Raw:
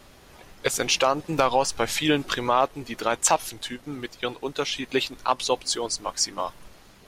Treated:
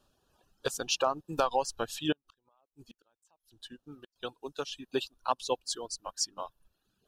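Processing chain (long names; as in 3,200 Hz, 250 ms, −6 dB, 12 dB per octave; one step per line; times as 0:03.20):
reverb reduction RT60 1.1 s
0:02.12–0:04.16: gate with flip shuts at −21 dBFS, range −31 dB
Butterworth band-reject 2,100 Hz, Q 2.4
expander for the loud parts 1.5 to 1, over −45 dBFS
level −5.5 dB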